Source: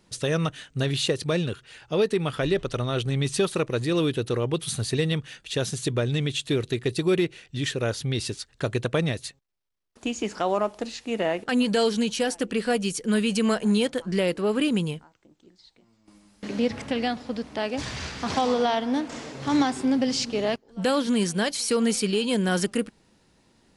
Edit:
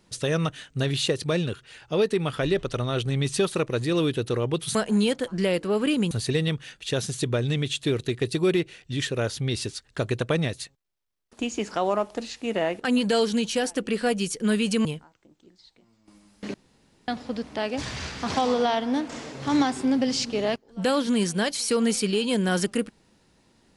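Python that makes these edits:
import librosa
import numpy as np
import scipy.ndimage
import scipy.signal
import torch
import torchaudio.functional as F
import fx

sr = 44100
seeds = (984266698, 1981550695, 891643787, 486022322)

y = fx.edit(x, sr, fx.move(start_s=13.49, length_s=1.36, to_s=4.75),
    fx.room_tone_fill(start_s=16.54, length_s=0.54), tone=tone)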